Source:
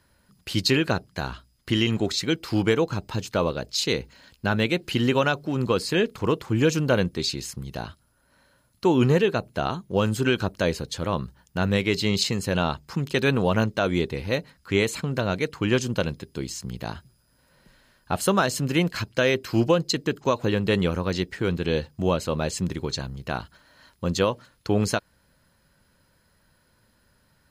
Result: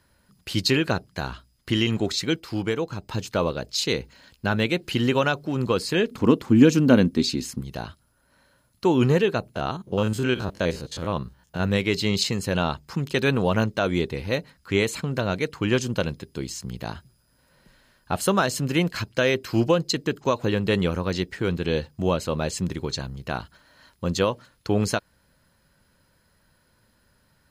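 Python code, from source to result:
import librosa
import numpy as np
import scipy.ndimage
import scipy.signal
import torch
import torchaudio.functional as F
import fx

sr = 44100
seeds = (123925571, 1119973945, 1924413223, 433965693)

y = fx.peak_eq(x, sr, hz=250.0, db=14.5, octaves=0.61, at=(6.11, 7.61))
y = fx.spec_steps(y, sr, hold_ms=50, at=(9.54, 11.62), fade=0.02)
y = fx.edit(y, sr, fx.clip_gain(start_s=2.4, length_s=0.69, db=-4.5), tone=tone)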